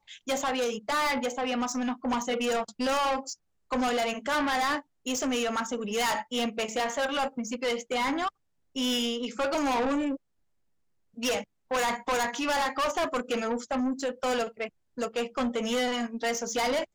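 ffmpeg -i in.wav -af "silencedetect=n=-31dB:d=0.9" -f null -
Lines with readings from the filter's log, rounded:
silence_start: 10.16
silence_end: 11.23 | silence_duration: 1.07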